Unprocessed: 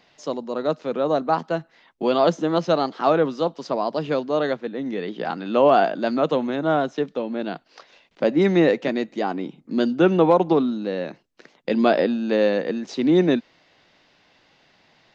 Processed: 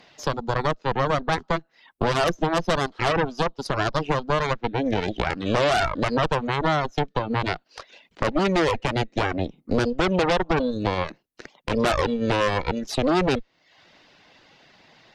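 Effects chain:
harmonic generator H 8 −9 dB, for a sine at −5 dBFS
reverb reduction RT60 0.52 s
downward compressor, threshold −24 dBFS, peak gain reduction 13 dB
boost into a limiter +13.5 dB
level −8 dB

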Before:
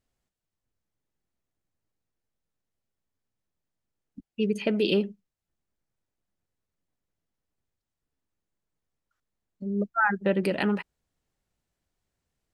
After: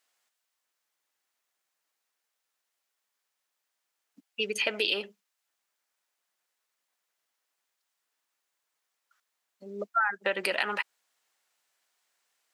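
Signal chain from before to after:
high-pass filter 970 Hz 12 dB per octave
in parallel at −1 dB: brickwall limiter −23 dBFS, peak gain reduction 9.5 dB
on the sum: downward compressor 6 to 1, threshold −29 dBFS, peak gain reduction 11.5 dB
level +5 dB

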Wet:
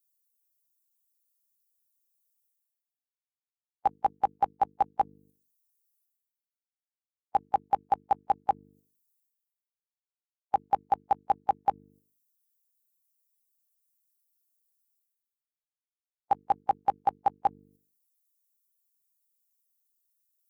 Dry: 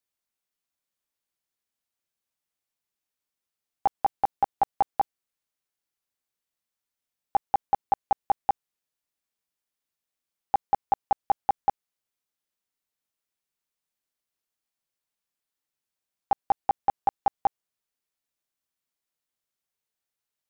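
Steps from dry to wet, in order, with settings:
spectral dynamics exaggerated over time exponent 2
high-pass filter 55 Hz
mains-hum notches 50/100/150/200/250/300/350/400/450 Hz
noise gate −60 dBFS, range −11 dB
reversed playback
upward compression, threshold −46 dBFS
reversed playback

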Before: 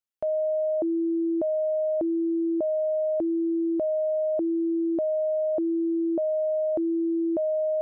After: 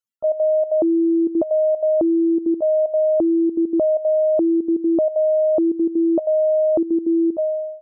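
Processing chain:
fade-out on the ending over 0.53 s
gate pattern "xx.x.xxx.xxxxx" 189 BPM −12 dB
spectral peaks only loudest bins 64
level +8.5 dB

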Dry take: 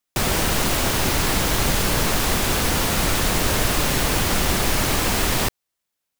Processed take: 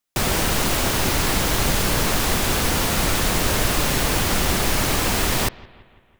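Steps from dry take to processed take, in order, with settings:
bucket-brigade delay 169 ms, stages 4,096, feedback 55%, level −22 dB

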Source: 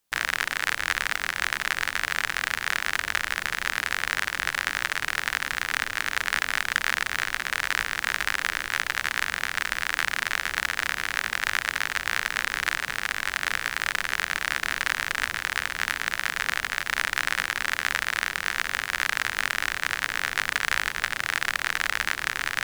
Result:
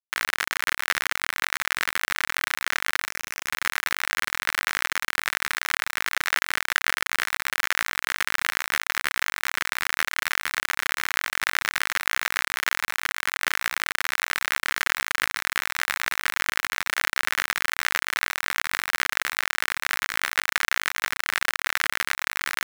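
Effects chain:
0:03.08–0:03.48: variable-slope delta modulation 64 kbit/s
bit reduction 4 bits

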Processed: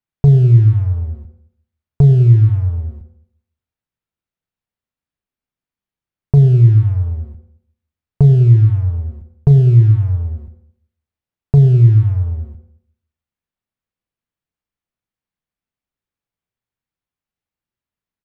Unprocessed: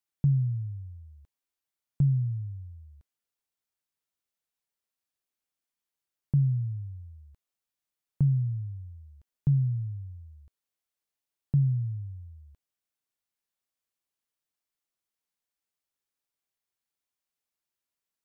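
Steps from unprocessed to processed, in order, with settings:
bass and treble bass +11 dB, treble −12 dB
downward compressor 4 to 1, threshold −18 dBFS, peak gain reduction 7 dB
leveller curve on the samples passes 2
double-tracking delay 35 ms −12 dB
on a send: convolution reverb RT60 0.65 s, pre-delay 77 ms, DRR 11.5 dB
on the sum: level +6 dB

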